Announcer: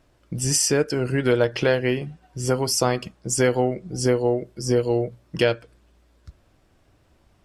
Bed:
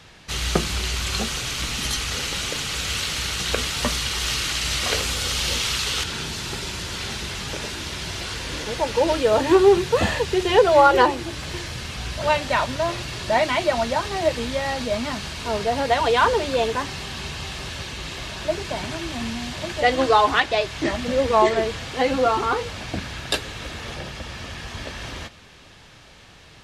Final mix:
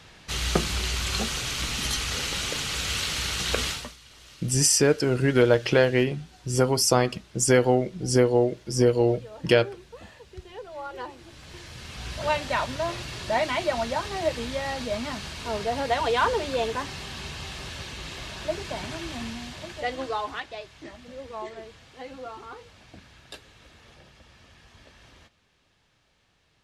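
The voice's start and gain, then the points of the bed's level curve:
4.10 s, +0.5 dB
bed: 0:03.71 −2.5 dB
0:03.96 −25.5 dB
0:10.68 −25.5 dB
0:12.12 −5 dB
0:19.13 −5 dB
0:20.90 −19.5 dB

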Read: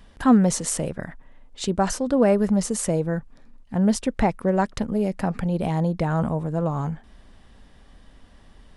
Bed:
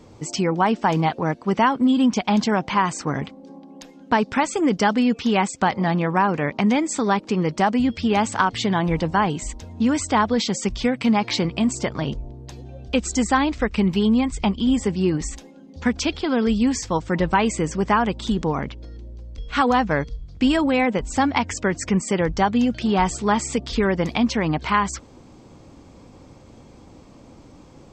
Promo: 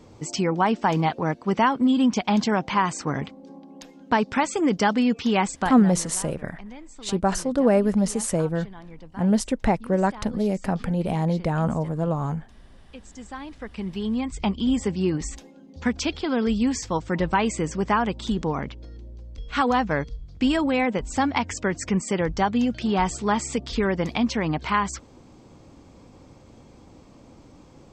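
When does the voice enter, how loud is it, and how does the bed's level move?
5.45 s, −0.5 dB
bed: 0:05.55 −2 dB
0:06.14 −22.5 dB
0:13.04 −22.5 dB
0:14.50 −3 dB

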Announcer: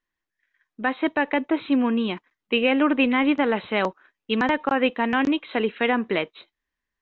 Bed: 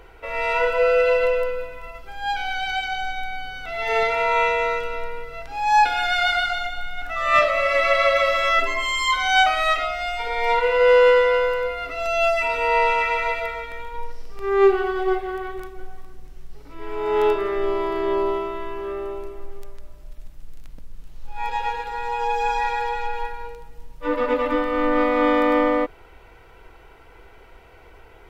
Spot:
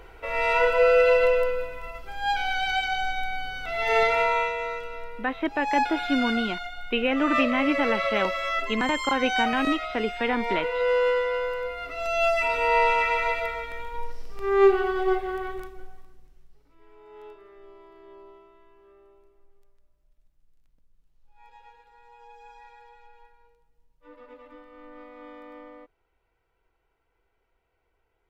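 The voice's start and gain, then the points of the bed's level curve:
4.40 s, −4.0 dB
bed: 0:04.20 −0.5 dB
0:04.52 −8.5 dB
0:11.30 −8.5 dB
0:12.46 −2 dB
0:15.52 −2 dB
0:17.09 −26.5 dB

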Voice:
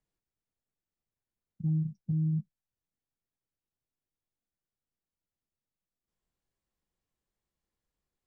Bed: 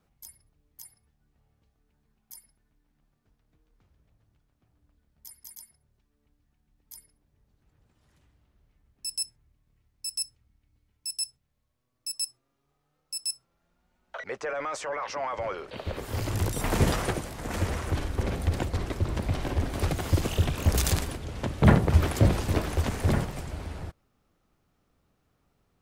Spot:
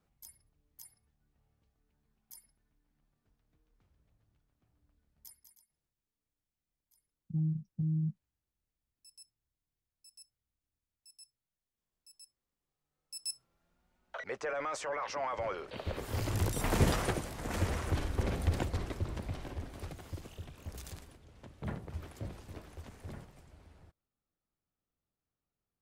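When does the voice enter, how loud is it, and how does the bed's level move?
5.70 s, −3.0 dB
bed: 0:05.26 −6 dB
0:05.71 −25 dB
0:12.52 −25 dB
0:13.43 −4 dB
0:18.58 −4 dB
0:20.39 −21.5 dB

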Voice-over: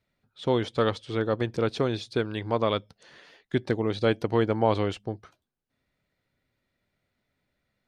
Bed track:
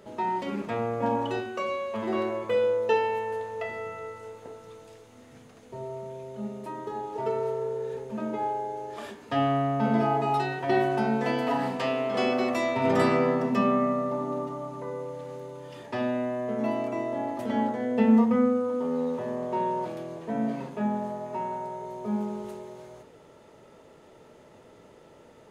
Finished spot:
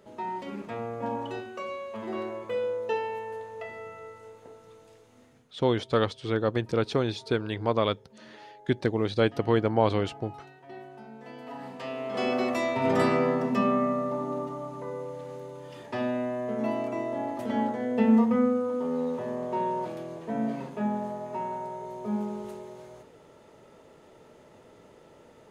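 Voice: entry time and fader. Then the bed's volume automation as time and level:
5.15 s, 0.0 dB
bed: 0:05.24 −5.5 dB
0:05.64 −20.5 dB
0:11.12 −20.5 dB
0:12.34 −1 dB

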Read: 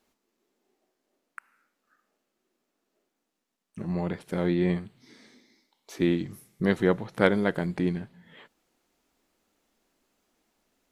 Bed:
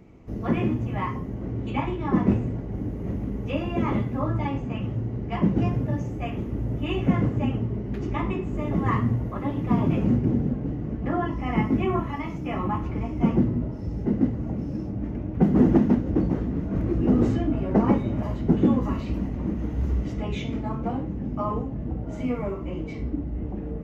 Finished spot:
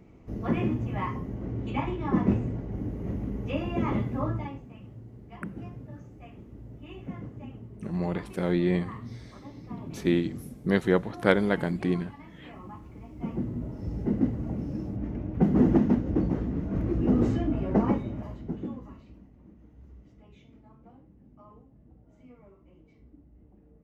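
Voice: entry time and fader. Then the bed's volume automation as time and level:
4.05 s, 0.0 dB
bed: 0:04.28 −3 dB
0:04.69 −17 dB
0:12.98 −17 dB
0:13.86 −3 dB
0:17.77 −3 dB
0:19.30 −25.5 dB

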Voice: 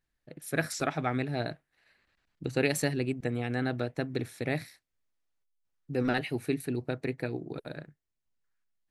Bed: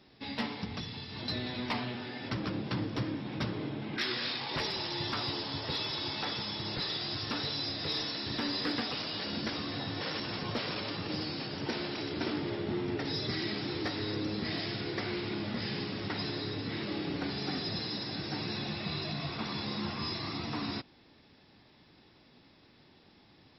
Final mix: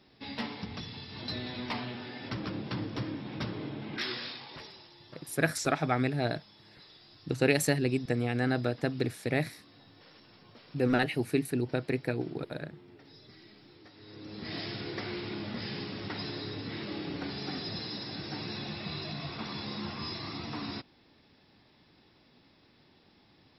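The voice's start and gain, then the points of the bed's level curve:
4.85 s, +2.0 dB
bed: 0:04.09 −1.5 dB
0:04.97 −20.5 dB
0:13.92 −20.5 dB
0:14.57 −2 dB

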